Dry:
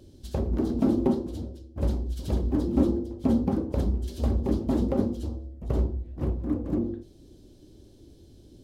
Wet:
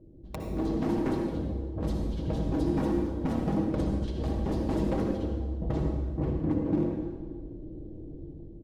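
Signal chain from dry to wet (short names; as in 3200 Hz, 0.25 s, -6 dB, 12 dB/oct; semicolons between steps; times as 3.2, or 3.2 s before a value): low-pass opened by the level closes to 510 Hz, open at -19.5 dBFS; notches 60/120/180/240/300/360/420 Hz; hard clip -24.5 dBFS, distortion -9 dB; compressor 5:1, threshold -37 dBFS, peak gain reduction 10 dB; bell 1300 Hz -4 dB 0.55 oct; wrapped overs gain 28 dB; AGC gain up to 10 dB; comb 6.3 ms, depth 53%; reverb RT60 1.4 s, pre-delay 52 ms, DRR 2.5 dB; gain -1.5 dB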